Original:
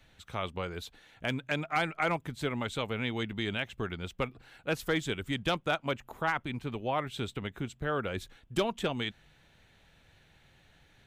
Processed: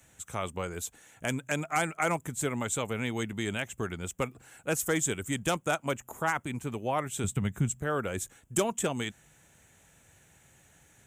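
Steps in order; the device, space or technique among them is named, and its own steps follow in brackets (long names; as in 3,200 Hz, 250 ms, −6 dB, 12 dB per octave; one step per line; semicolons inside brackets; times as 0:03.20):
budget condenser microphone (high-pass filter 61 Hz; high shelf with overshoot 5,600 Hz +10.5 dB, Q 3)
0:07.24–0:07.81: low shelf with overshoot 240 Hz +8 dB, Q 1.5
level +1.5 dB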